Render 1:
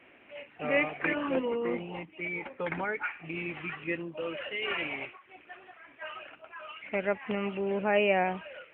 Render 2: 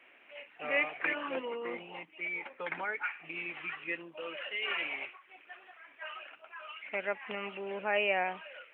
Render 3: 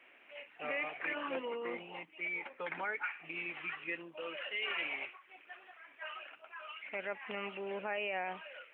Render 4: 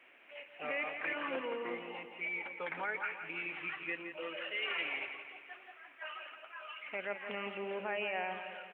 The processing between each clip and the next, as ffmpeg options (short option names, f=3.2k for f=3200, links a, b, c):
-af "highpass=f=980:p=1"
-af "alimiter=level_in=2dB:limit=-24dB:level=0:latency=1:release=42,volume=-2dB,volume=-1.5dB"
-af "aecho=1:1:169|338|507|676|845|1014:0.355|0.192|0.103|0.0559|0.0302|0.0163"